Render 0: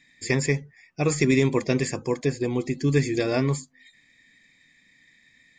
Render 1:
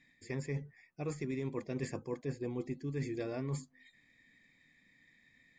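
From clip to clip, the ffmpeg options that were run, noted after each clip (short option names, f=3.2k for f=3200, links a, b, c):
-af "highshelf=f=2.6k:g=-11,areverse,acompressor=threshold=-30dB:ratio=10,areverse,volume=-4dB"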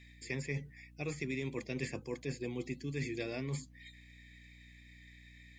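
-filter_complex "[0:a]highshelf=f=1.8k:t=q:w=1.5:g=9.5,acrossover=split=130|3000[a][b][c];[c]alimiter=level_in=16dB:limit=-24dB:level=0:latency=1:release=172,volume=-16dB[d];[a][b][d]amix=inputs=3:normalize=0,aeval=exprs='val(0)+0.00158*(sin(2*PI*60*n/s)+sin(2*PI*2*60*n/s)/2+sin(2*PI*3*60*n/s)/3+sin(2*PI*4*60*n/s)/4+sin(2*PI*5*60*n/s)/5)':c=same,volume=-1dB"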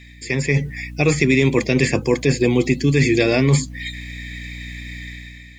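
-filter_complex "[0:a]dynaudnorm=f=110:g=9:m=10.5dB,asplit=2[a][b];[b]alimiter=limit=-22dB:level=0:latency=1:release=162,volume=3dB[c];[a][c]amix=inputs=2:normalize=0,volume=6.5dB"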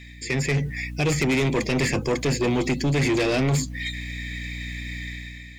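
-af "asoftclip=type=tanh:threshold=-18dB"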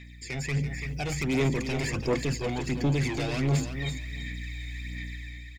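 -filter_complex "[0:a]aphaser=in_gain=1:out_gain=1:delay=1.4:decay=0.54:speed=1.4:type=sinusoidal,asplit=2[a][b];[b]aecho=0:1:336|672:0.355|0.0532[c];[a][c]amix=inputs=2:normalize=0,volume=-9dB"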